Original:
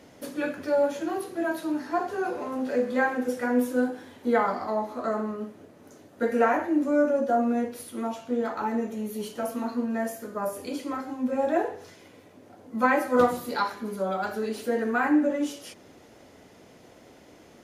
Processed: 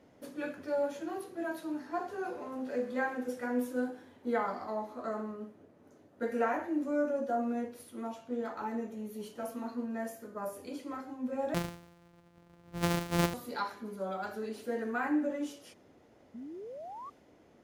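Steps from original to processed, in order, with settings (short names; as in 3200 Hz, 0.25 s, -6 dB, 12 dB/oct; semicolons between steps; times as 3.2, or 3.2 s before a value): 11.54–13.34 sample sorter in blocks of 256 samples; 16.34–17.1 painted sound rise 220–1200 Hz -35 dBFS; mismatched tape noise reduction decoder only; gain -8.5 dB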